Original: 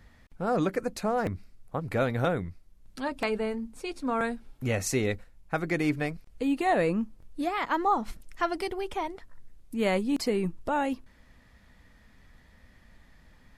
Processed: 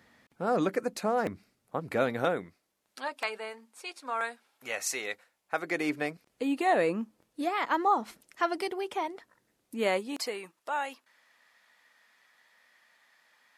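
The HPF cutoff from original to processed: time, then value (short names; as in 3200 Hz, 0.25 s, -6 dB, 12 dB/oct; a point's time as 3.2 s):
2.08 s 210 Hz
3.24 s 800 Hz
5.09 s 800 Hz
6.09 s 270 Hz
9.76 s 270 Hz
10.46 s 860 Hz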